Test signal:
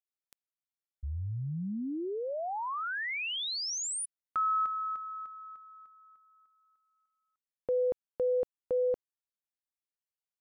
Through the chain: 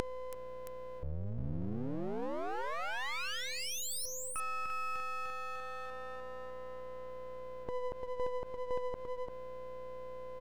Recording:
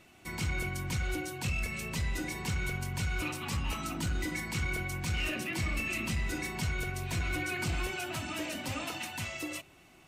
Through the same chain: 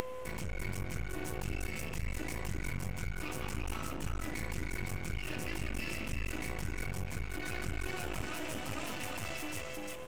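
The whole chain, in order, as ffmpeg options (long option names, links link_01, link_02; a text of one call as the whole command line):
ffmpeg -i in.wav -af "equalizer=frequency=4000:width_type=o:width=0.65:gain=-9.5,aeval=exprs='val(0)+0.00631*sin(2*PI*510*n/s)':channel_layout=same,lowshelf=frequency=69:gain=9,areverse,acompressor=threshold=-41dB:ratio=5:attack=8.9:release=51:knee=6:detection=rms,areverse,aeval=exprs='val(0)+0.000501*(sin(2*PI*60*n/s)+sin(2*PI*2*60*n/s)/2+sin(2*PI*3*60*n/s)/3+sin(2*PI*4*60*n/s)/4+sin(2*PI*5*60*n/s)/5)':channel_layout=same,aecho=1:1:344:0.631,acompressor=mode=upward:threshold=-43dB:ratio=2.5:attack=23:release=59:knee=2.83:detection=peak,aeval=exprs='max(val(0),0)':channel_layout=same,volume=6.5dB" out.wav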